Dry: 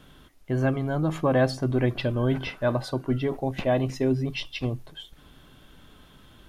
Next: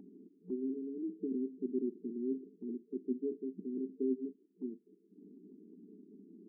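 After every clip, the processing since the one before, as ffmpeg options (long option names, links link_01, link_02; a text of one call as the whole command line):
ffmpeg -i in.wav -af "afftfilt=real='re*between(b*sr/4096,180,450)':imag='im*between(b*sr/4096,180,450)':win_size=4096:overlap=0.75,acompressor=mode=upward:threshold=-34dB:ratio=2.5,volume=-9dB" out.wav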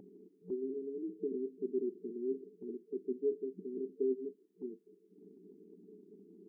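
ffmpeg -i in.wav -af "equalizer=frequency=125:width_type=o:width=1:gain=10,equalizer=frequency=250:width_type=o:width=1:gain=-12,equalizer=frequency=500:width_type=o:width=1:gain=10,volume=1dB" out.wav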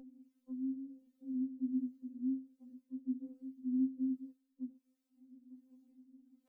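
ffmpeg -i in.wav -filter_complex "[0:a]flanger=delay=3.7:depth=2.2:regen=55:speed=0.53:shape=triangular,acrossover=split=420[link_01][link_02];[link_01]aeval=exprs='val(0)*(1-0.7/2+0.7/2*cos(2*PI*1.3*n/s))':channel_layout=same[link_03];[link_02]aeval=exprs='val(0)*(1-0.7/2-0.7/2*cos(2*PI*1.3*n/s))':channel_layout=same[link_04];[link_03][link_04]amix=inputs=2:normalize=0,afftfilt=real='re*3.46*eq(mod(b,12),0)':imag='im*3.46*eq(mod(b,12),0)':win_size=2048:overlap=0.75,volume=8dB" out.wav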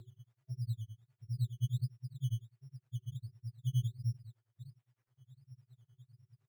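ffmpeg -i in.wav -af "tremolo=f=9.8:d=1,afreqshift=-380,acrusher=samples=11:mix=1:aa=0.000001:lfo=1:lforange=6.6:lforate=1.4,volume=5dB" out.wav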